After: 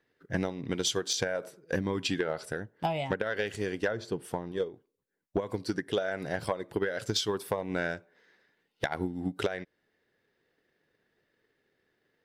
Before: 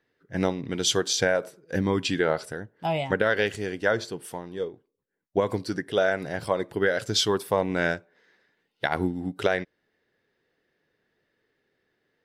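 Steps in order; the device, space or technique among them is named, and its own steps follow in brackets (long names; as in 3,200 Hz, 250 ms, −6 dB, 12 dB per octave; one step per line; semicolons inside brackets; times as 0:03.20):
0:03.88–0:04.52: spectral tilt −1.5 dB per octave
drum-bus smash (transient designer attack +8 dB, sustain 0 dB; downward compressor 6 to 1, threshold −24 dBFS, peak gain reduction 13.5 dB; soft clipping −15 dBFS, distortion −19 dB)
level −1.5 dB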